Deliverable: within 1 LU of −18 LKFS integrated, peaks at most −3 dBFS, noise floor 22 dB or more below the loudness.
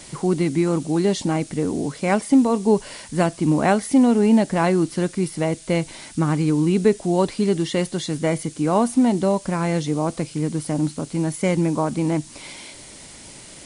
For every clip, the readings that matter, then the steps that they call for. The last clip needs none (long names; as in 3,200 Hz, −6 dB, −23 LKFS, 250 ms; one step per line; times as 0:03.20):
background noise floor −42 dBFS; target noise floor −43 dBFS; integrated loudness −21.0 LKFS; sample peak −4.5 dBFS; target loudness −18.0 LKFS
→ broadband denoise 6 dB, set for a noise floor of −42 dBFS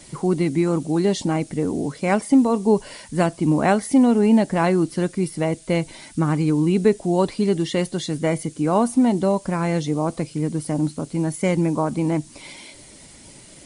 background noise floor −46 dBFS; integrated loudness −21.0 LKFS; sample peak −4.5 dBFS; target loudness −18.0 LKFS
→ level +3 dB
brickwall limiter −3 dBFS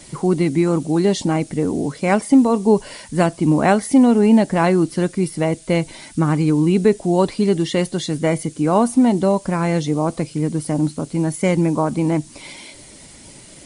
integrated loudness −18.0 LKFS; sample peak −3.0 dBFS; background noise floor −43 dBFS